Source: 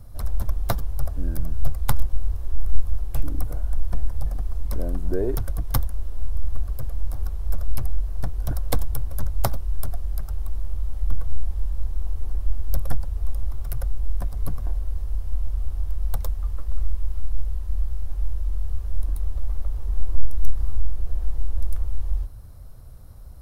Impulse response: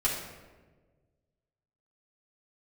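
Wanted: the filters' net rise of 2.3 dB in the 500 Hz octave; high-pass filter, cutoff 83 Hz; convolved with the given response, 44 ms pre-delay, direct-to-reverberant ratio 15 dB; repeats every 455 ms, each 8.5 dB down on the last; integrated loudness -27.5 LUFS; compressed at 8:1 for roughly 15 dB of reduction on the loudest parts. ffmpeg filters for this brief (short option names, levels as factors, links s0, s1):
-filter_complex "[0:a]highpass=83,equalizer=f=500:t=o:g=3,acompressor=threshold=0.0112:ratio=8,aecho=1:1:455|910|1365|1820:0.376|0.143|0.0543|0.0206,asplit=2[s0][s1];[1:a]atrim=start_sample=2205,adelay=44[s2];[s1][s2]afir=irnorm=-1:irlink=0,volume=0.0668[s3];[s0][s3]amix=inputs=2:normalize=0,volume=7.5"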